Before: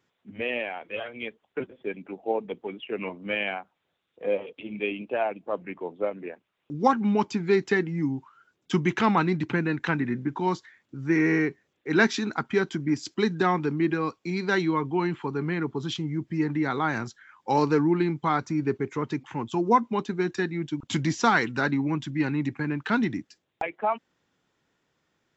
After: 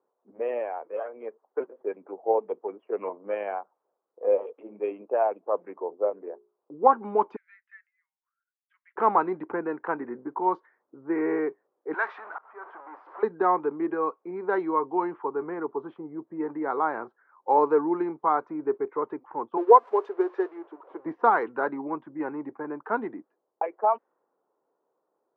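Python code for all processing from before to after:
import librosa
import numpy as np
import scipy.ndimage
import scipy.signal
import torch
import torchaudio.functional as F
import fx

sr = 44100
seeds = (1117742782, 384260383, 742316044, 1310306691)

y = fx.chain(x, sr, fx.high_shelf(hz=2200.0, db=9.0),
    fx.resample_linear(factor=6), at=(1.24, 2.47))
y = fx.chain(y, sr, fx.lowpass(hz=1200.0, slope=6),
    fx.hum_notches(base_hz=60, count=7), at=(5.84, 6.72))
y = fx.chain(y, sr, fx.steep_highpass(hz=1800.0, slope=48),
    fx.high_shelf(hz=5400.0, db=-9.0), at=(7.36, 8.96))
y = fx.chain(y, sr, fx.zero_step(step_db=-24.5),
    fx.cheby1_highpass(hz=1300.0, order=2),
    fx.auto_swell(attack_ms=424.0), at=(11.94, 13.23))
y = fx.chain(y, sr, fx.crossing_spikes(level_db=-17.0),
    fx.low_shelf_res(hz=280.0, db=-12.0, q=3.0),
    fx.upward_expand(threshold_db=-33.0, expansion=1.5), at=(19.57, 21.06))
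y = scipy.signal.sosfilt(scipy.signal.cheby1(2, 1.0, [430.0, 1100.0], 'bandpass', fs=sr, output='sos'), y)
y = fx.env_lowpass(y, sr, base_hz=910.0, full_db=-22.0)
y = y * 10.0 ** (4.0 / 20.0)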